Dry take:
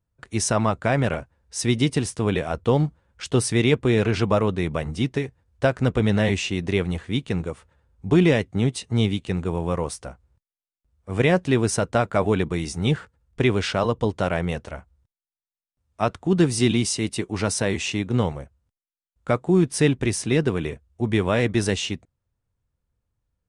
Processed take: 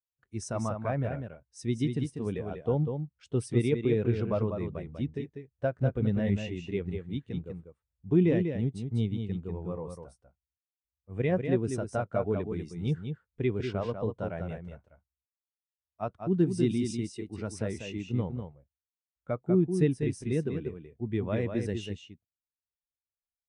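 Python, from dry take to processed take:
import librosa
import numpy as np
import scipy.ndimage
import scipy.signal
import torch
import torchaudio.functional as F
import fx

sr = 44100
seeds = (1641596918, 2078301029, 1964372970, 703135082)

y = x + 10.0 ** (-4.5 / 20.0) * np.pad(x, (int(195 * sr / 1000.0), 0))[:len(x)]
y = fx.spectral_expand(y, sr, expansion=1.5)
y = y * librosa.db_to_amplitude(-8.5)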